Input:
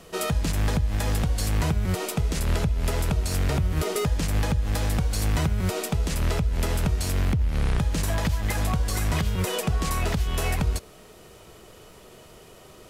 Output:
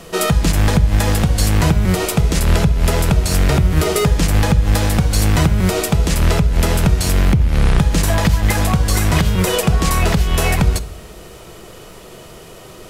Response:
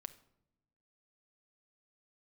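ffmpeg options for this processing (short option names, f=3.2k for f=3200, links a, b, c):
-filter_complex "[0:a]asplit=2[a][b];[1:a]atrim=start_sample=2205[c];[b][c]afir=irnorm=-1:irlink=0,volume=13.5dB[d];[a][d]amix=inputs=2:normalize=0,volume=-1dB"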